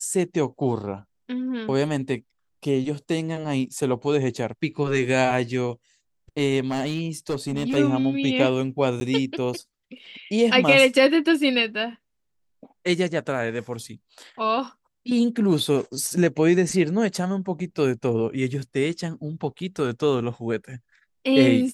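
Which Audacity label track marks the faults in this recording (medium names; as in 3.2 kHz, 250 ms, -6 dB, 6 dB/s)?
6.680000	7.770000	clipped -21 dBFS
9.000000	9.010000	dropout 10 ms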